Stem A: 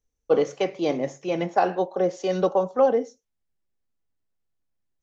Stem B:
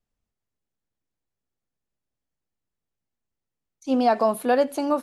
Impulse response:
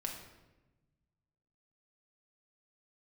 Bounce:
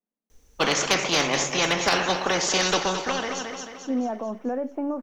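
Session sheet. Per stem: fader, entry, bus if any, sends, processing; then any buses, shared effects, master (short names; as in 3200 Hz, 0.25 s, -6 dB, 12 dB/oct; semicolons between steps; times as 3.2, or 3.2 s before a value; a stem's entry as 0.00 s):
+2.0 dB, 0.30 s, no send, echo send -9.5 dB, spectral compressor 4:1; auto duck -11 dB, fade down 1.15 s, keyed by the second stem
-6.5 dB, 0.00 s, no send, no echo send, elliptic band-pass 210–2300 Hz; limiter -17.5 dBFS, peak gain reduction 8.5 dB; tilt -3.5 dB/oct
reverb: off
echo: feedback echo 0.22 s, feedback 50%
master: bell 120 Hz -12 dB 0.3 oct; overloaded stage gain 12.5 dB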